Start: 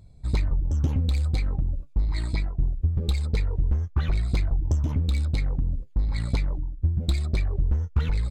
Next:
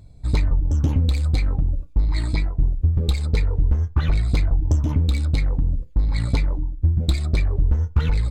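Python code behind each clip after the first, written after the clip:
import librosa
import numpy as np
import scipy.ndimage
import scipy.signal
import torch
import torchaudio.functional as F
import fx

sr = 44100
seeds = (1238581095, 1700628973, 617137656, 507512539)

y = fx.rev_fdn(x, sr, rt60_s=0.3, lf_ratio=0.95, hf_ratio=0.4, size_ms=20.0, drr_db=11.5)
y = y * librosa.db_to_amplitude(4.5)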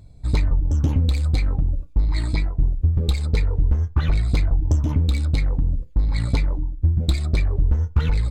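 y = x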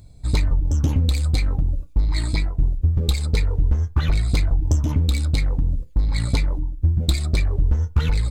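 y = fx.high_shelf(x, sr, hz=4300.0, db=9.5)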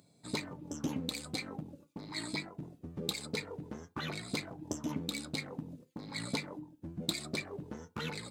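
y = scipy.signal.sosfilt(scipy.signal.butter(4, 180.0, 'highpass', fs=sr, output='sos'), x)
y = y * librosa.db_to_amplitude(-7.5)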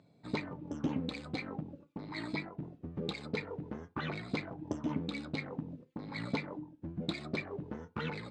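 y = scipy.signal.sosfilt(scipy.signal.butter(2, 2600.0, 'lowpass', fs=sr, output='sos'), x)
y = y * librosa.db_to_amplitude(2.0)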